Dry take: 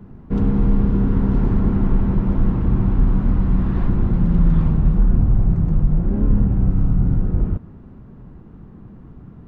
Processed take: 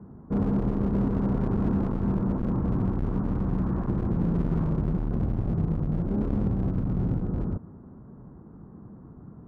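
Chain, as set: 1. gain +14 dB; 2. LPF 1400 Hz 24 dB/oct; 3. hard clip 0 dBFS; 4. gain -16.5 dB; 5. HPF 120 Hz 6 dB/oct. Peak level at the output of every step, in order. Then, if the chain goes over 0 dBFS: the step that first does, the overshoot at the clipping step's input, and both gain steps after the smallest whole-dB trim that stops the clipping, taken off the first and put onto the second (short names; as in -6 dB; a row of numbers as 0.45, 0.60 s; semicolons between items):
+9.0, +9.0, 0.0, -16.5, -13.5 dBFS; step 1, 9.0 dB; step 1 +5 dB, step 4 -7.5 dB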